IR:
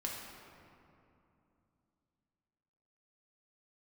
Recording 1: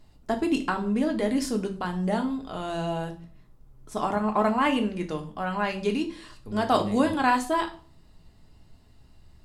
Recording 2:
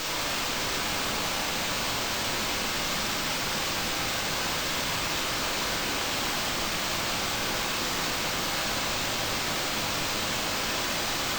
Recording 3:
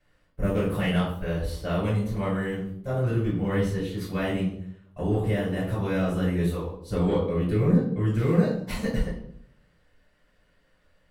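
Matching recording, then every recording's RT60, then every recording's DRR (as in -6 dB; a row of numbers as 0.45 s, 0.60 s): 2; 0.40 s, 2.8 s, 0.65 s; 3.5 dB, -3.0 dB, -8.5 dB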